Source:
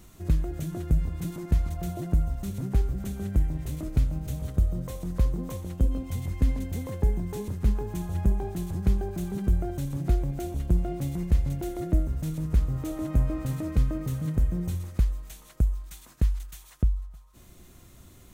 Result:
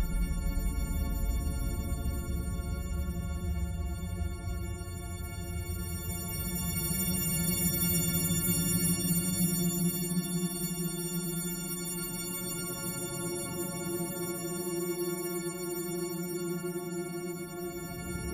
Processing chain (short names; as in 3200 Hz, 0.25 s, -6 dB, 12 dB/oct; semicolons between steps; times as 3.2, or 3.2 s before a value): frequency quantiser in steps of 4 st; Paulstretch 41×, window 0.10 s, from 1.04